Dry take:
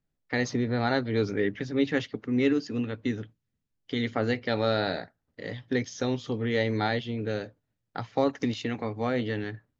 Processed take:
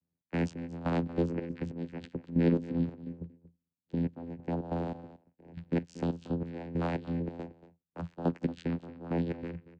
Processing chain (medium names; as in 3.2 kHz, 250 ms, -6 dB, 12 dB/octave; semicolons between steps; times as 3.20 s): 3.05–5.54 s: peaking EQ 3.2 kHz -12 dB 2.9 oct; vocoder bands 8, saw 84.8 Hz; trance gate "xx.xx...xx." 140 bpm -12 dB; delay 232 ms -16 dB; trim -1 dB